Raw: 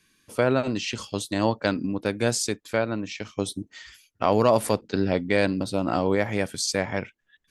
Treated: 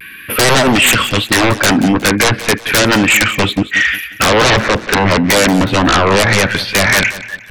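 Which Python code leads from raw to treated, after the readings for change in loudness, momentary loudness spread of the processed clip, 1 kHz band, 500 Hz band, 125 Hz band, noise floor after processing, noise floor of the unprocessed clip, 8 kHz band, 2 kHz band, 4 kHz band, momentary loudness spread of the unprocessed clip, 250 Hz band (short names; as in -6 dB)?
+14.0 dB, 5 LU, +14.5 dB, +9.0 dB, +13.5 dB, -33 dBFS, -70 dBFS, +16.0 dB, +20.5 dB, +19.5 dB, 10 LU, +12.5 dB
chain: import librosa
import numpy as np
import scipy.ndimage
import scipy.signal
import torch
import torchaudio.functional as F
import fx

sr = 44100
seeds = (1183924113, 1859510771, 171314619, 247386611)

y = scipy.signal.sosfilt(scipy.signal.butter(2, 41.0, 'highpass', fs=sr, output='sos'), x)
y = fx.env_lowpass_down(y, sr, base_hz=1200.0, full_db=-20.0)
y = fx.curve_eq(y, sr, hz=(590.0, 900.0, 1500.0, 2600.0, 7200.0, 12000.0), db=(0, -3, 14, 14, -26, 13))
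y = fx.rider(y, sr, range_db=4, speed_s=2.0)
y = fx.fold_sine(y, sr, drive_db=17, ceiling_db=-6.5)
y = fx.echo_feedback(y, sr, ms=181, feedback_pct=37, wet_db=-15)
y = fx.vibrato(y, sr, rate_hz=0.32, depth_cents=19.0)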